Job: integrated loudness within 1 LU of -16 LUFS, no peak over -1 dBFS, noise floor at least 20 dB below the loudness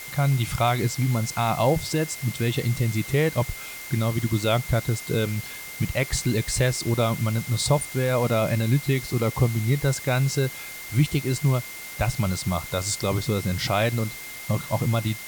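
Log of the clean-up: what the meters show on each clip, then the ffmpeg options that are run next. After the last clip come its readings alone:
steady tone 2.1 kHz; tone level -39 dBFS; noise floor -38 dBFS; noise floor target -45 dBFS; loudness -24.5 LUFS; peak level -8.5 dBFS; loudness target -16.0 LUFS
-> -af "bandreject=f=2100:w=30"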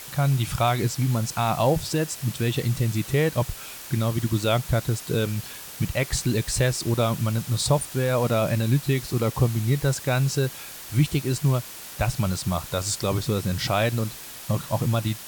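steady tone not found; noise floor -40 dBFS; noise floor target -45 dBFS
-> -af "afftdn=nr=6:nf=-40"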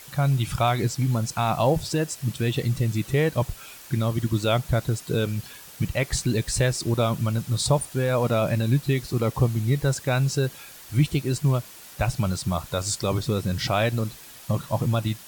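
noise floor -45 dBFS; loudness -25.0 LUFS; peak level -8.5 dBFS; loudness target -16.0 LUFS
-> -af "volume=2.82,alimiter=limit=0.891:level=0:latency=1"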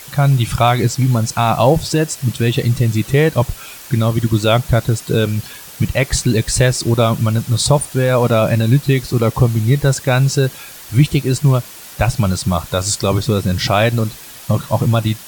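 loudness -16.0 LUFS; peak level -1.0 dBFS; noise floor -36 dBFS

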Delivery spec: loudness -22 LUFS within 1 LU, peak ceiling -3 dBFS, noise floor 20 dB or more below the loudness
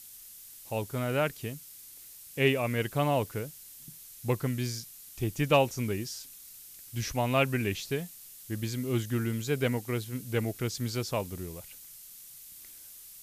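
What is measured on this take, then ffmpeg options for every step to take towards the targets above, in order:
noise floor -50 dBFS; noise floor target -51 dBFS; loudness -31.0 LUFS; peak level -12.5 dBFS; loudness target -22.0 LUFS
-> -af "afftdn=nr=6:nf=-50"
-af "volume=2.82"

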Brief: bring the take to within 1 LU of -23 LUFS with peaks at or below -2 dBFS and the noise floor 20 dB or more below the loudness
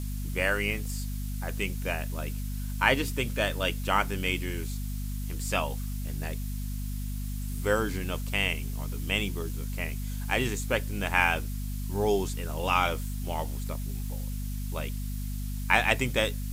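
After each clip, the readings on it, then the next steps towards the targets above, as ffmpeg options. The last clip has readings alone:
hum 50 Hz; highest harmonic 250 Hz; hum level -31 dBFS; noise floor -33 dBFS; noise floor target -50 dBFS; loudness -30.0 LUFS; peak level -6.0 dBFS; loudness target -23.0 LUFS
-> -af "bandreject=f=50:t=h:w=4,bandreject=f=100:t=h:w=4,bandreject=f=150:t=h:w=4,bandreject=f=200:t=h:w=4,bandreject=f=250:t=h:w=4"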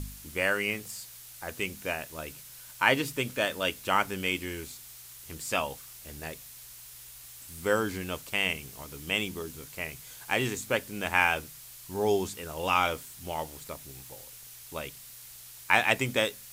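hum not found; noise floor -48 dBFS; noise floor target -50 dBFS
-> -af "afftdn=nr=6:nf=-48"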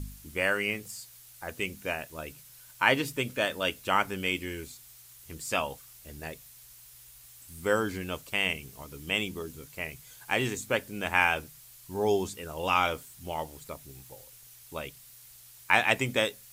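noise floor -53 dBFS; loudness -29.5 LUFS; peak level -5.5 dBFS; loudness target -23.0 LUFS
-> -af "volume=2.11,alimiter=limit=0.794:level=0:latency=1"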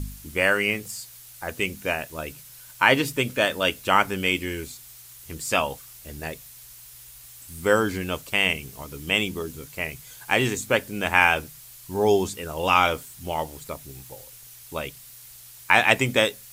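loudness -23.5 LUFS; peak level -2.0 dBFS; noise floor -46 dBFS

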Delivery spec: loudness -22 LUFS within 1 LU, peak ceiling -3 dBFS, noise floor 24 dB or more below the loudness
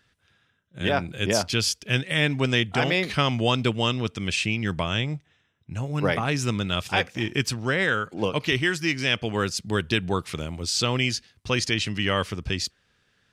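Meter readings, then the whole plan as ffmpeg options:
loudness -25.0 LUFS; peak level -8.0 dBFS; loudness target -22.0 LUFS
-> -af "volume=1.41"

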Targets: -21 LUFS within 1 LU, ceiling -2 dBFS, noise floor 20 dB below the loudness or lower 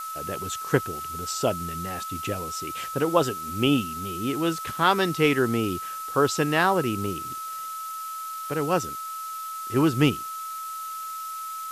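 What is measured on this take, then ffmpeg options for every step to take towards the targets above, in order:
steady tone 1.3 kHz; tone level -32 dBFS; noise floor -35 dBFS; noise floor target -47 dBFS; loudness -26.5 LUFS; peak level -5.5 dBFS; loudness target -21.0 LUFS
-> -af "bandreject=f=1300:w=30"
-af "afftdn=nr=12:nf=-35"
-af "volume=1.88,alimiter=limit=0.794:level=0:latency=1"

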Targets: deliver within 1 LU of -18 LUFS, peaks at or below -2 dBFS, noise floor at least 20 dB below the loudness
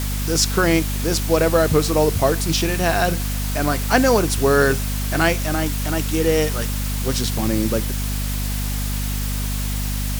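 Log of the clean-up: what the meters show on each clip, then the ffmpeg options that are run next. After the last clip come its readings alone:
hum 50 Hz; highest harmonic 250 Hz; hum level -21 dBFS; noise floor -23 dBFS; noise floor target -40 dBFS; loudness -20.0 LUFS; peak level -2.0 dBFS; loudness target -18.0 LUFS
-> -af "bandreject=f=50:t=h:w=4,bandreject=f=100:t=h:w=4,bandreject=f=150:t=h:w=4,bandreject=f=200:t=h:w=4,bandreject=f=250:t=h:w=4"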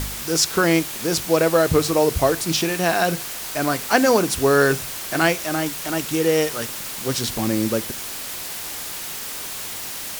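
hum not found; noise floor -31 dBFS; noise floor target -41 dBFS
-> -af "afftdn=nr=10:nf=-31"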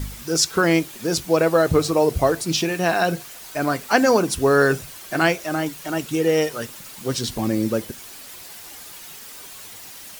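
noise floor -40 dBFS; noise floor target -41 dBFS
-> -af "afftdn=nr=6:nf=-40"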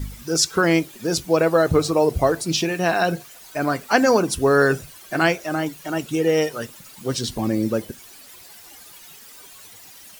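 noise floor -45 dBFS; loudness -21.0 LUFS; peak level -2.5 dBFS; loudness target -18.0 LUFS
-> -af "volume=1.41,alimiter=limit=0.794:level=0:latency=1"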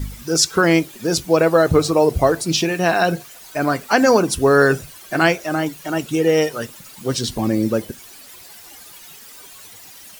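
loudness -18.0 LUFS; peak level -2.0 dBFS; noise floor -42 dBFS

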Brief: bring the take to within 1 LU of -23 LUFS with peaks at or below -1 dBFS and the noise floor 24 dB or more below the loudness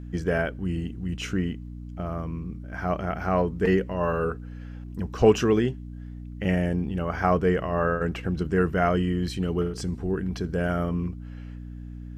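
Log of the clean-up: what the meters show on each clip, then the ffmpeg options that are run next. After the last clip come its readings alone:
hum 60 Hz; highest harmonic 300 Hz; hum level -36 dBFS; loudness -26.5 LUFS; peak level -6.0 dBFS; loudness target -23.0 LUFS
-> -af "bandreject=f=60:t=h:w=4,bandreject=f=120:t=h:w=4,bandreject=f=180:t=h:w=4,bandreject=f=240:t=h:w=4,bandreject=f=300:t=h:w=4"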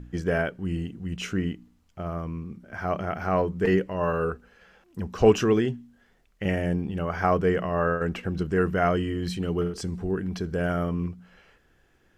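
hum not found; loudness -27.0 LUFS; peak level -6.5 dBFS; loudness target -23.0 LUFS
-> -af "volume=1.58"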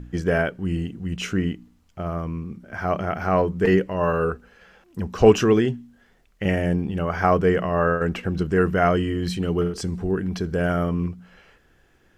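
loudness -23.0 LUFS; peak level -2.5 dBFS; noise floor -60 dBFS

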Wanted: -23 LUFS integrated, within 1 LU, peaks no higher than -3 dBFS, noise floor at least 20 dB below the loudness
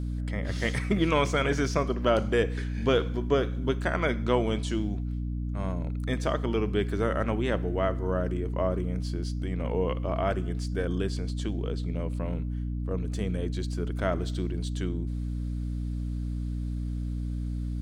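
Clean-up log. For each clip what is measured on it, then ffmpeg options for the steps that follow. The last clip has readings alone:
hum 60 Hz; highest harmonic 300 Hz; hum level -29 dBFS; loudness -29.5 LUFS; peak level -10.5 dBFS; loudness target -23.0 LUFS
-> -af "bandreject=f=60:t=h:w=6,bandreject=f=120:t=h:w=6,bandreject=f=180:t=h:w=6,bandreject=f=240:t=h:w=6,bandreject=f=300:t=h:w=6"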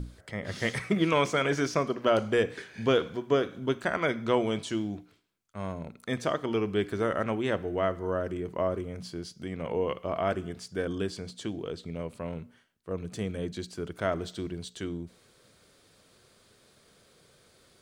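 hum not found; loudness -31.0 LUFS; peak level -11.5 dBFS; loudness target -23.0 LUFS
-> -af "volume=2.51"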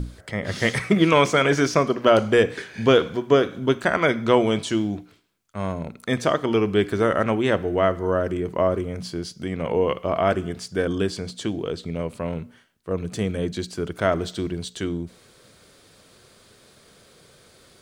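loudness -23.0 LUFS; peak level -3.5 dBFS; noise floor -54 dBFS

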